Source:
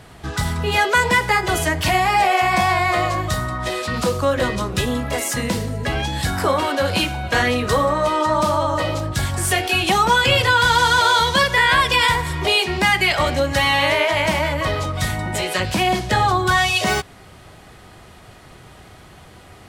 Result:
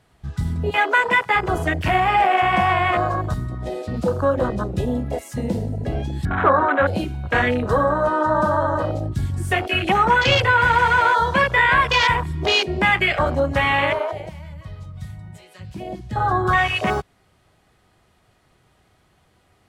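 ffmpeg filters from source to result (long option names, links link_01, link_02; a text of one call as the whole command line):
ffmpeg -i in.wav -filter_complex "[0:a]asettb=1/sr,asplit=3[link_01][link_02][link_03];[link_01]atrim=end=0.704[link_04];[link_02]atrim=start=0.7:end=1.36,asetpts=PTS-STARTPTS,afade=type=in:duration=0.004:curve=qsin,afade=type=out:start_time=0.656:duration=0.004:curve=qsin,highpass=frequency=370:poles=1[link_05];[link_03]atrim=start=1.356[link_06];[link_04][link_05]acrossfade=duration=0.004:curve1=hsin:curve2=qsin[link_07];[link_07][link_06]acrossfade=duration=0.004:curve1=qsin:curve2=hsin,asettb=1/sr,asplit=3[link_08][link_09][link_10];[link_08]atrim=end=6.254[link_11];[link_09]atrim=start=6.25:end=6.87,asetpts=PTS-STARTPTS,afade=type=in:duration=0.004:curve=qsin,afade=type=out:start_time=0.616:duration=0.004:curve=qsin,lowpass=frequency=1500:width_type=q:width=2.4[link_12];[link_10]atrim=start=6.866[link_13];[link_11][link_12]acrossfade=duration=0.004:curve1=hsin:curve2=qsin[link_14];[link_14][link_13]acrossfade=duration=0.004:curve1=qsin:curve2=hsin,asplit=3[link_15][link_16][link_17];[link_15]atrim=end=14.27,asetpts=PTS-STARTPTS,afade=type=out:start_time=13.8:duration=0.47:silence=0.375837[link_18];[link_16]atrim=start=14.27:end=15.97,asetpts=PTS-STARTPTS,volume=-8.5dB[link_19];[link_17]atrim=start=15.97,asetpts=PTS-STARTPTS,afade=type=in:duration=0.47:silence=0.375837[link_20];[link_18][link_19][link_20]concat=n=3:v=0:a=1,afwtdn=0.112" out.wav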